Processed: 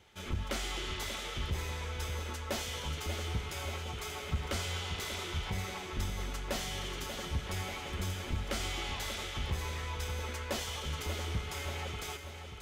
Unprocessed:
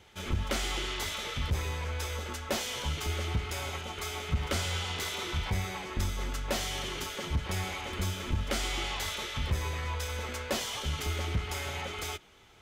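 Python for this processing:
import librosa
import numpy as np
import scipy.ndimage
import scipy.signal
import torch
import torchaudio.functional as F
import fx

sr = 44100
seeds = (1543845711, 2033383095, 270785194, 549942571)

y = fx.echo_feedback(x, sr, ms=586, feedback_pct=51, wet_db=-8.5)
y = y * librosa.db_to_amplitude(-4.5)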